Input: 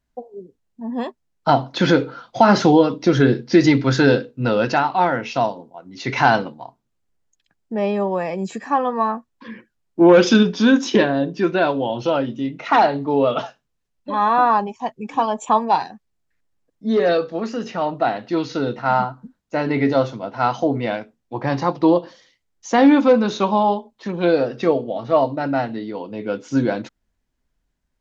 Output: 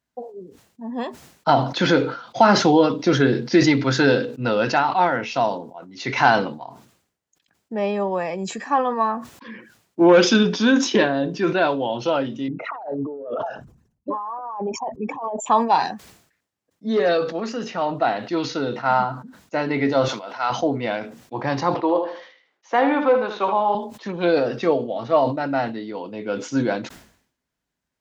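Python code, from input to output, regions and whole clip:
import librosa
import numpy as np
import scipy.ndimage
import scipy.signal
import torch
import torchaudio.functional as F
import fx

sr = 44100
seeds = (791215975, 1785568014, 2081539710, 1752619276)

y = fx.chain(x, sr, fx.envelope_sharpen(power=2.0),
    fx.peak_eq(hz=3200.0, db=-10.5, octaves=1.9),
    fx.over_compress(threshold_db=-27.0, ratio=-1.0), at=(12.48, 15.46))
y = fx.chain(y, sr, fx.highpass(hz=1300.0, slope=6),
    fx.sustainer(db_per_s=24.0), at=(20.08, 20.5))
y = fx.chain(y, sr, fx.bandpass_edges(low_hz=410.0, high_hz=2300.0),
    fx.echo_feedback(ms=77, feedback_pct=20, wet_db=-8), at=(21.74, 23.75))
y = scipy.signal.sosfilt(scipy.signal.butter(2, 92.0, 'highpass', fs=sr, output='sos'), y)
y = fx.low_shelf(y, sr, hz=440.0, db=-4.5)
y = fx.sustainer(y, sr, db_per_s=94.0)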